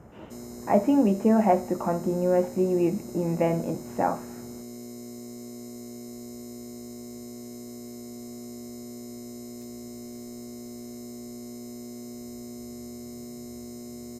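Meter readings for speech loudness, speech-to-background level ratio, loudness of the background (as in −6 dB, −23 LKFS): −25.0 LKFS, 16.0 dB, −41.0 LKFS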